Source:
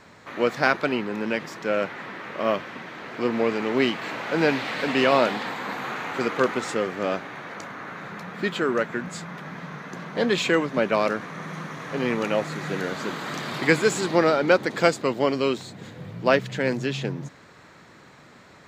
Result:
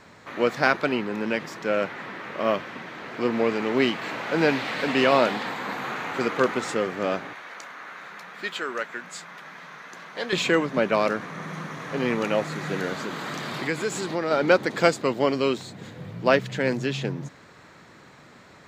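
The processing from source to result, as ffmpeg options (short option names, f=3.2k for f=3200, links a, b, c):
-filter_complex "[0:a]asettb=1/sr,asplit=3[a][b][c];[a]atrim=end=7.334[d];[b]atrim=start=7.33:end=10.33,asetpts=PTS-STARTPTS,afade=t=in:d=0.004:c=qsin,afade=t=out:st=2.996:d=0.004:c=qsin,highpass=f=1.2k:p=1[e];[c]atrim=start=10.326[f];[d][e]acrossfade=d=0.004:c1=hsin:c2=qsin[g];[g][f]acrossfade=d=0.004:c1=qsin:c2=hsin,asplit=3[h][i][j];[h]afade=t=out:st=12.95:d=0.02[k];[i]acompressor=threshold=-28dB:ratio=2:attack=3.2:release=140:knee=1:detection=peak,afade=t=in:st=12.95:d=0.02,afade=t=out:st=14.3:d=0.02[l];[j]afade=t=in:st=14.3:d=0.02[m];[k][l][m]amix=inputs=3:normalize=0"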